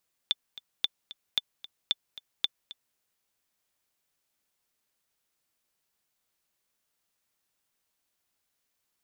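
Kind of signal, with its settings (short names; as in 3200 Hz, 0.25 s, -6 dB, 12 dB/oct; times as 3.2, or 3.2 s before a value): metronome 225 bpm, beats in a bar 2, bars 5, 3520 Hz, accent 17.5 dB -11.5 dBFS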